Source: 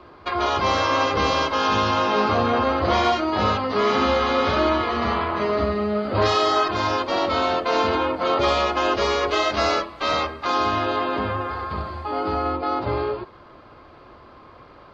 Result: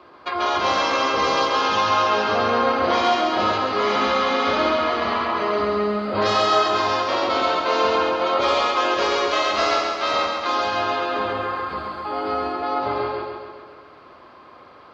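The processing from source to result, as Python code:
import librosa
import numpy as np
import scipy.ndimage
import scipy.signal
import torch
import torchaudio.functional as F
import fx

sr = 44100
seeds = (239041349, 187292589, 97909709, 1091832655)

y = fx.highpass(x, sr, hz=340.0, slope=6)
y = fx.echo_feedback(y, sr, ms=135, feedback_pct=57, wet_db=-4)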